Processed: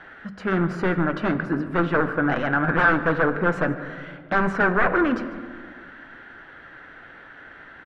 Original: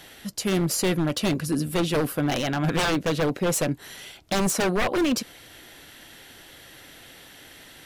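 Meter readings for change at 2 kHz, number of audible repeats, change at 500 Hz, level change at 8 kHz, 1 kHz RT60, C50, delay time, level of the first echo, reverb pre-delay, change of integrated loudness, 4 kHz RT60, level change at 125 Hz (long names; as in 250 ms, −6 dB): +9.0 dB, 1, +1.5 dB, below −25 dB, 1.7 s, 11.0 dB, 145 ms, −18.5 dB, 3 ms, +2.5 dB, 1.0 s, 0.0 dB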